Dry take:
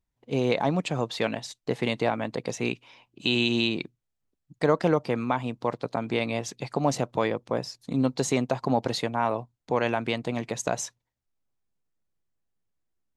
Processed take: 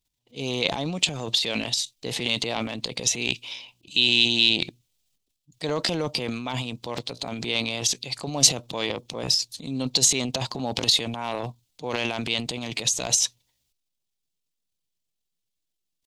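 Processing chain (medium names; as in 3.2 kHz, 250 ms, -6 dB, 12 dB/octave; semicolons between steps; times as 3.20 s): tempo 0.82×; transient shaper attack -2 dB, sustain +12 dB; resonant high shelf 2.3 kHz +11.5 dB, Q 1.5; trim -5 dB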